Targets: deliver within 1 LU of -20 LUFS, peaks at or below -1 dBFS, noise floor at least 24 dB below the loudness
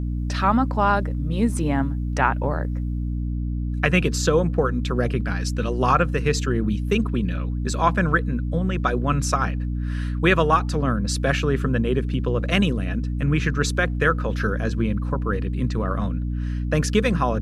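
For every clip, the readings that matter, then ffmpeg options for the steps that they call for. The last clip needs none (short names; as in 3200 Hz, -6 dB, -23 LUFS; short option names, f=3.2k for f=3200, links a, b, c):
hum 60 Hz; harmonics up to 300 Hz; hum level -23 dBFS; loudness -23.0 LUFS; peak -3.0 dBFS; loudness target -20.0 LUFS
-> -af "bandreject=f=60:t=h:w=4,bandreject=f=120:t=h:w=4,bandreject=f=180:t=h:w=4,bandreject=f=240:t=h:w=4,bandreject=f=300:t=h:w=4"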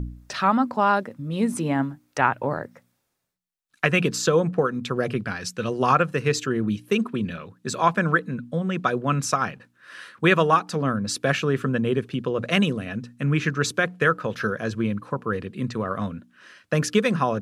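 hum none; loudness -24.0 LUFS; peak -3.0 dBFS; loudness target -20.0 LUFS
-> -af "volume=4dB,alimiter=limit=-1dB:level=0:latency=1"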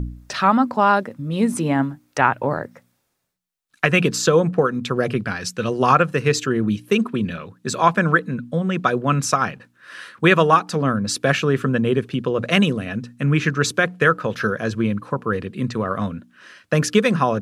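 loudness -20.0 LUFS; peak -1.0 dBFS; noise floor -67 dBFS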